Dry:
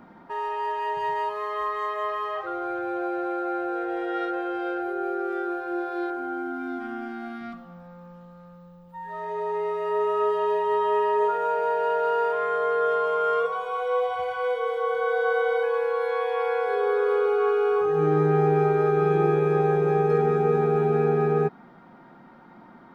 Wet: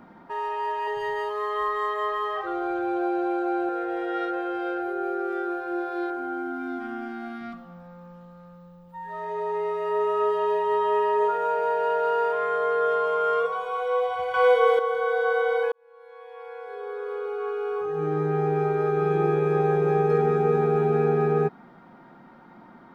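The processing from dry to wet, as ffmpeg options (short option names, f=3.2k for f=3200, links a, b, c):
-filter_complex "[0:a]asettb=1/sr,asplit=3[a][b][c];[a]atrim=end=0.874[d];[b]atrim=start=0.87:end=3.69,asetpts=PTS-STARTPTS,afade=t=in:d=0.004:c=qsin,afade=t=out:st=2.816:d=0.004:c=qsin,aecho=1:1:2.6:0.65,atrim=end_sample=124362[e];[c]atrim=start=3.686[f];[d][e]acrossfade=d=0.004:c1=hsin:c2=qsin[g];[g][f]acrossfade=d=0.004:c1=qsin:c2=hsin,asplit=4[h][i][j][k];[h]atrim=end=14.342[l];[i]atrim=start=14.338:end=14.792,asetpts=PTS-STARTPTS,volume=8dB[m];[j]atrim=start=14.788:end=15.72,asetpts=PTS-STARTPTS,afade=t=out:st=0.928:d=0.004:c=hsin[n];[k]atrim=start=15.72,asetpts=PTS-STARTPTS,afade=t=in:d=4.16[o];[l][m]acrossfade=d=0.004:c1=hsin:c2=hsin[p];[n][o]concat=n=2:v=0:a=1[q];[p][q]acrossfade=d=0.004:c1=hsin:c2=hsin"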